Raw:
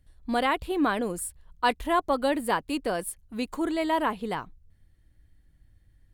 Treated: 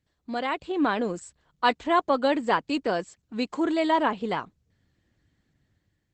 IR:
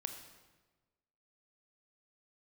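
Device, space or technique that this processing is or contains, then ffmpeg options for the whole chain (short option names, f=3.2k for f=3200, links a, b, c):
video call: -af "highpass=140,dynaudnorm=f=210:g=7:m=8dB,volume=-4.5dB" -ar 48000 -c:a libopus -b:a 12k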